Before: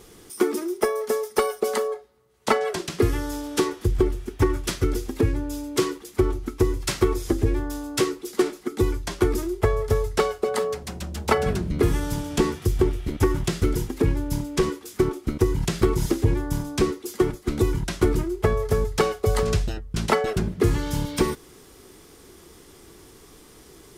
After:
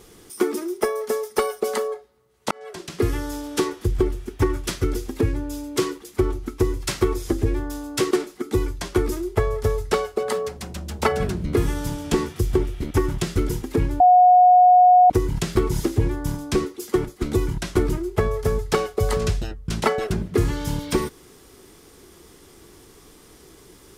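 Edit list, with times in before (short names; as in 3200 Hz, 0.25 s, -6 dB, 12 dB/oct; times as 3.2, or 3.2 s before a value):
2.51–3.1 fade in
8.11–8.37 cut
14.26–15.36 bleep 726 Hz -9 dBFS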